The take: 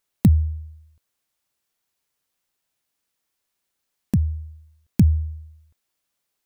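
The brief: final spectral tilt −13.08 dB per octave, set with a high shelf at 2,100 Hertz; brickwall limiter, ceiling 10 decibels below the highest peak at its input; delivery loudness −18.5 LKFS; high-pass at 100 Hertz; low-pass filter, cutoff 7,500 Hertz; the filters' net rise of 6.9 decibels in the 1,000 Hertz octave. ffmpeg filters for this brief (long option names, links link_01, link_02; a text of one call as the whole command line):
ffmpeg -i in.wav -af "highpass=100,lowpass=7500,equalizer=frequency=1000:width_type=o:gain=8,highshelf=frequency=2100:gain=5.5,volume=11dB,alimiter=limit=-4.5dB:level=0:latency=1" out.wav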